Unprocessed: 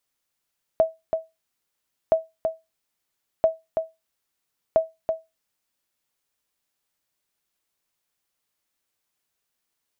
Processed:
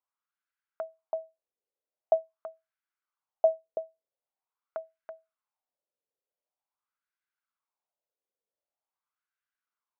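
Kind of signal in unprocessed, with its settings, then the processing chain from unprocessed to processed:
sonar ping 647 Hz, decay 0.21 s, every 1.32 s, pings 4, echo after 0.33 s, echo -6 dB -9.5 dBFS
notch 1800 Hz, Q 12; wah 0.45 Hz 470–1600 Hz, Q 3.7

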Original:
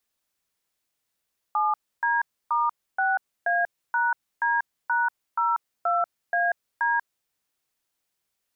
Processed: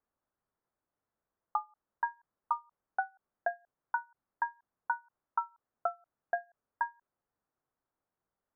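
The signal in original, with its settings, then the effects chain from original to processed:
DTMF "7D*6A#D#02AD", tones 0.189 s, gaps 0.289 s, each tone -23 dBFS
LPF 1400 Hz 24 dB/oct; ending taper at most 330 dB/s

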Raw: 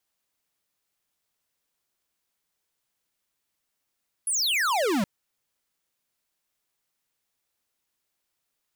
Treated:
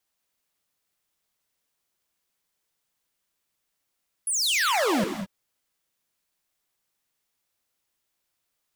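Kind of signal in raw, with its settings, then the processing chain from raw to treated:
laser zap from 11000 Hz, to 180 Hz, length 0.77 s square, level -24 dB
non-linear reverb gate 0.23 s rising, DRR 6 dB

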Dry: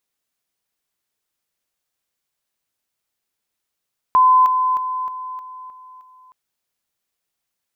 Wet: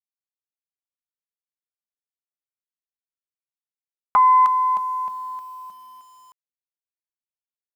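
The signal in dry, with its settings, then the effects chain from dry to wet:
level ladder 1020 Hz -9 dBFS, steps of -6 dB, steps 7, 0.31 s 0.00 s
thirty-one-band EQ 125 Hz -6 dB, 200 Hz +11 dB, 315 Hz -7 dB, 500 Hz -3 dB, 1250 Hz -5 dB; bit-crush 9-bit; Doppler distortion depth 0.33 ms

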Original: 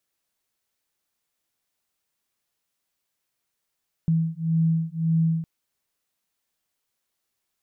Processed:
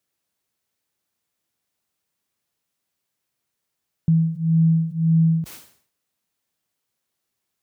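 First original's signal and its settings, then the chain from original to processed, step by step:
beating tones 162 Hz, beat 1.8 Hz, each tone -23 dBFS 1.36 s
HPF 70 Hz; low shelf 350 Hz +6 dB; sustainer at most 110 dB/s

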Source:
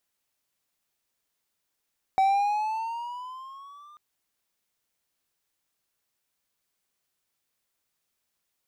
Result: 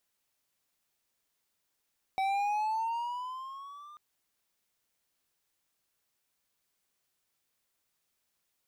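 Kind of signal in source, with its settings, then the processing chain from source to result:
gliding synth tone triangle, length 1.79 s, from 763 Hz, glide +8 st, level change -30.5 dB, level -15.5 dB
overloaded stage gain 29 dB

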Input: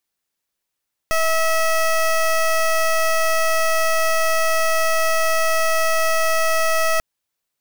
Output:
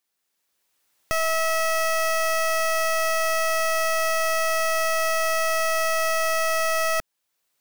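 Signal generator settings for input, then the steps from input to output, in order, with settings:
pulse 647 Hz, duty 17% -17.5 dBFS 5.89 s
recorder AGC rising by 12 dB/s; low shelf 160 Hz -9 dB; soft clip -18.5 dBFS

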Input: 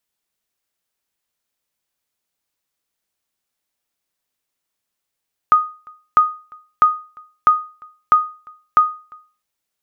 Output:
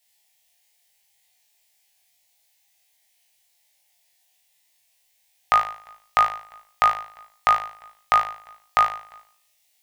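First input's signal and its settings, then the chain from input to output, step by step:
sonar ping 1240 Hz, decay 0.37 s, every 0.65 s, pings 6, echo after 0.35 s, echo -28.5 dB -4 dBFS
EQ curve 120 Hz 0 dB, 300 Hz -18 dB, 770 Hz +11 dB, 1300 Hz -11 dB, 1900 Hz +10 dB; flutter echo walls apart 3.2 m, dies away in 0.51 s

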